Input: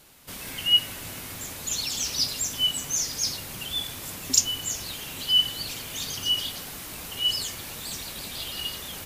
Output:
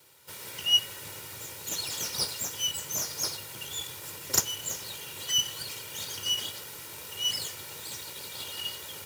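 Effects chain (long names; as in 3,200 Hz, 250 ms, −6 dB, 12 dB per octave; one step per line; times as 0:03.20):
lower of the sound and its delayed copy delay 2.1 ms
high-pass filter 93 Hz 24 dB per octave
level −2.5 dB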